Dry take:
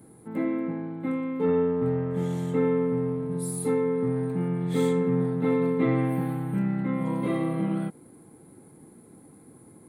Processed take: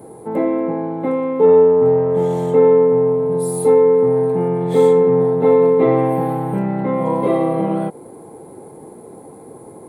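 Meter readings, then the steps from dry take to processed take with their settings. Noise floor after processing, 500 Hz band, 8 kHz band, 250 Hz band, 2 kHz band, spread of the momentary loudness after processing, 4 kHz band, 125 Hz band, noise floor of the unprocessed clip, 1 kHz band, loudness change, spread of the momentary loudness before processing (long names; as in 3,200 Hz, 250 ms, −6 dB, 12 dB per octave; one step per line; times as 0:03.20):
−39 dBFS, +15.0 dB, +5.5 dB, +5.5 dB, +4.0 dB, 9 LU, can't be measured, +4.5 dB, −52 dBFS, +14.5 dB, +11.5 dB, 6 LU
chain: flat-topped bell 620 Hz +12 dB
in parallel at +1 dB: downward compressor, threshold −28 dBFS, peak gain reduction 16 dB
on the sum: level +1.5 dB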